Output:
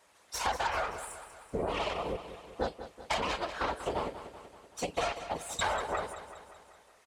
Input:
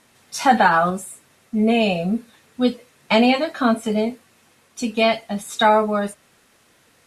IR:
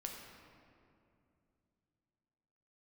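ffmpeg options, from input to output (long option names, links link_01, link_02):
-af "aeval=exprs='0.708*(cos(1*acos(clip(val(0)/0.708,-1,1)))-cos(1*PI/2))+0.282*(cos(6*acos(clip(val(0)/0.708,-1,1)))-cos(6*PI/2))':channel_layout=same,afftfilt=real='hypot(re,im)*cos(2*PI*random(0))':imag='hypot(re,im)*sin(2*PI*random(1))':win_size=512:overlap=0.75,equalizer=frequency=125:width_type=o:width=1:gain=-10,equalizer=frequency=250:width_type=o:width=1:gain=-8,equalizer=frequency=500:width_type=o:width=1:gain=4,equalizer=frequency=1000:width_type=o:width=1:gain=5,equalizer=frequency=8000:width_type=o:width=1:gain=5,acompressor=threshold=-27dB:ratio=6,highpass=57,highshelf=frequency=8100:gain=-7.5,aecho=1:1:191|382|573|764|955|1146:0.251|0.143|0.0816|0.0465|0.0265|0.0151,volume=-2.5dB"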